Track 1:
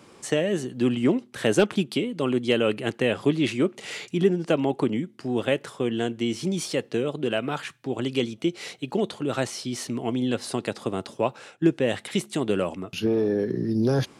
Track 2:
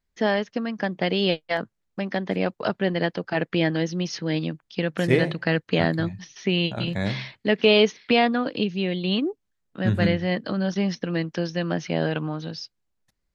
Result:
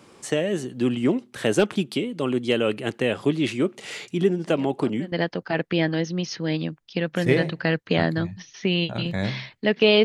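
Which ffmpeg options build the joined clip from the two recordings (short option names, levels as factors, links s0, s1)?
-filter_complex "[1:a]asplit=2[s0][s1];[0:a]apad=whole_dur=10.04,atrim=end=10.04,atrim=end=5.122[s2];[s1]atrim=start=2.938:end=7.86[s3];[s0]atrim=start=2.2:end=2.94,asetpts=PTS-STARTPTS,volume=0.158,afade=t=in:d=0.004:c=hsin,afade=t=out:st=0.736:d=0.004:c=hsin,adelay=4380[s4];[s2][s3]acrossfade=d=0.004:c1=hsin:c2=hsin[s5];[s5][s4]amix=inputs=2:normalize=0"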